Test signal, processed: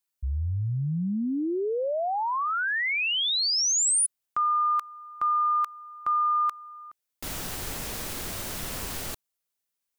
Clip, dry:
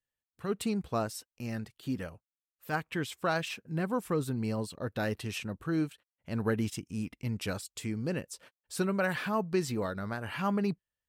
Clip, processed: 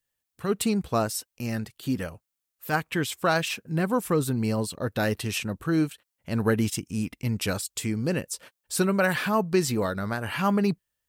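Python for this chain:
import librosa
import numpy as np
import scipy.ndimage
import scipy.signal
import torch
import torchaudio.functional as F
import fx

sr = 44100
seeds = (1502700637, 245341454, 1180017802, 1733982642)

y = fx.high_shelf(x, sr, hz=6300.0, db=7.0)
y = y * 10.0 ** (6.5 / 20.0)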